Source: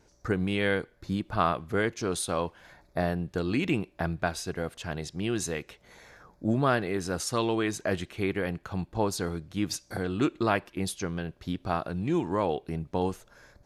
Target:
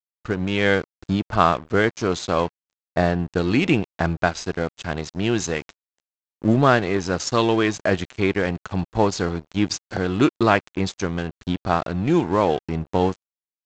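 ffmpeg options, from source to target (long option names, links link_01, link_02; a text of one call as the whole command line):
ffmpeg -i in.wav -af "dynaudnorm=framelen=350:gausssize=3:maxgain=5.5dB,aresample=16000,aeval=exprs='sgn(val(0))*max(abs(val(0))-0.0141,0)':channel_layout=same,aresample=44100,volume=4dB" out.wav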